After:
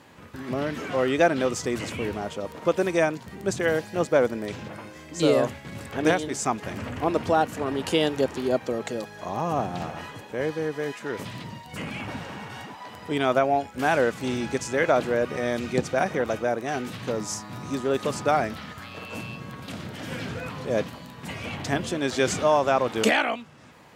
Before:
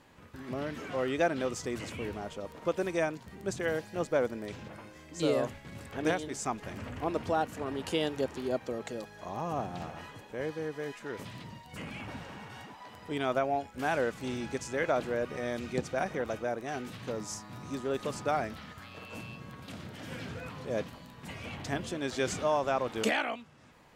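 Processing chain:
high-pass filter 77 Hz
level +8 dB

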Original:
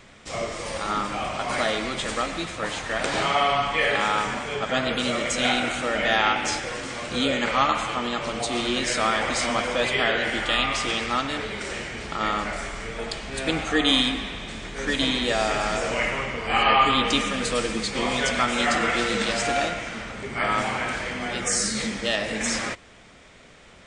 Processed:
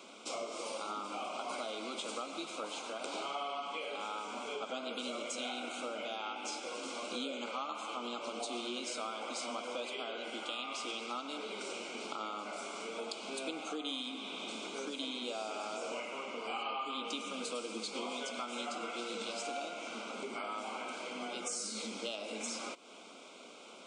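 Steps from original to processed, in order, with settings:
Butterworth high-pass 230 Hz 36 dB per octave
downward compressor 5 to 1, threshold −37 dBFS, peak gain reduction 20 dB
Butterworth band-reject 1,800 Hz, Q 2.2
level −1 dB

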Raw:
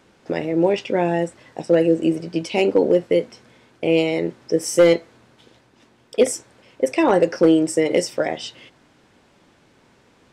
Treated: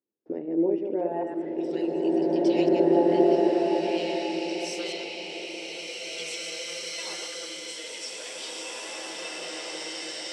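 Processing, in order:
delay that plays each chunk backwards 112 ms, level −4.5 dB
noise gate −50 dBFS, range −26 dB
band-pass filter sweep 340 Hz → 4,200 Hz, 0:00.93–0:01.75
delay with a low-pass on its return 212 ms, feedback 72%, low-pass 1,000 Hz, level −13 dB
slow-attack reverb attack 2,440 ms, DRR −8.5 dB
level −5 dB

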